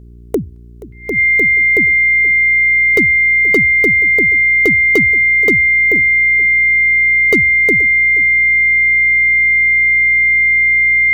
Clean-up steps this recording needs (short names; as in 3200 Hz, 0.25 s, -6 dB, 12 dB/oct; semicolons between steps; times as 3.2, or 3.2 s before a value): clip repair -4 dBFS; de-hum 58.9 Hz, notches 7; notch 2100 Hz, Q 30; inverse comb 0.477 s -18 dB